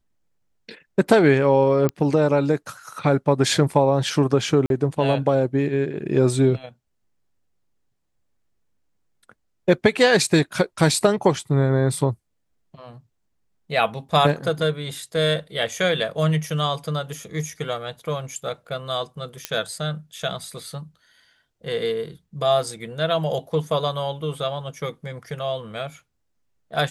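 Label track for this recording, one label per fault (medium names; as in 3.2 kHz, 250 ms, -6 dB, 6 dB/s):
1.890000	1.890000	pop -10 dBFS
4.660000	4.700000	dropout 42 ms
19.450000	19.450000	pop -8 dBFS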